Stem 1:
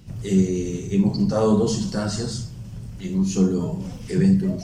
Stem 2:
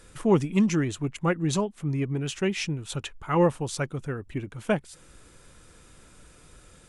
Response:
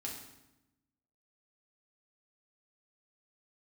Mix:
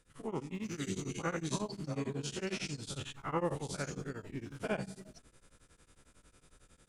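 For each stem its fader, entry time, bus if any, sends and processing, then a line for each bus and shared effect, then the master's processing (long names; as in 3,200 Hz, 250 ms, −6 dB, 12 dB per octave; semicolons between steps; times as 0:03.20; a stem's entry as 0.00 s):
−4.0 dB, 0.55 s, no send, low-pass filter 3,800 Hz 6 dB per octave; spectral tilt +4 dB per octave; automatic ducking −14 dB, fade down 2.00 s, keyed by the second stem
0:00.65 −20.5 dB → 0:01.12 −14 dB, 0.00 s, send −10.5 dB, every bin's largest magnitude spread in time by 120 ms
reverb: on, RT60 0.95 s, pre-delay 4 ms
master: tremolo along a rectified sine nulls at 11 Hz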